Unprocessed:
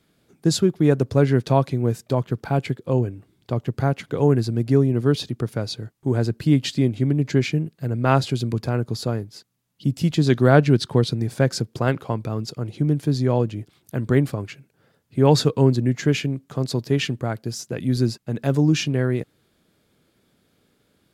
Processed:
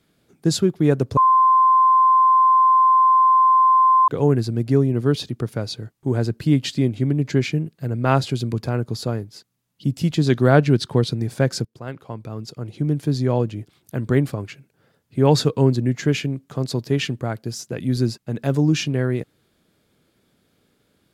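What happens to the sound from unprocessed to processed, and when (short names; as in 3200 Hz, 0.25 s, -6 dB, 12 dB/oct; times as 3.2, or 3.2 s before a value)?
1.17–4.08 bleep 1040 Hz -11 dBFS
11.65–13.06 fade in, from -18 dB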